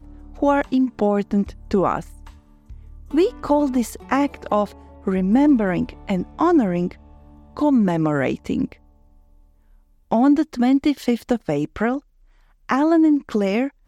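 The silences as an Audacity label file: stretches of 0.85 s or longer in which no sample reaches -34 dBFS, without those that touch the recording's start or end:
8.730000	10.110000	silence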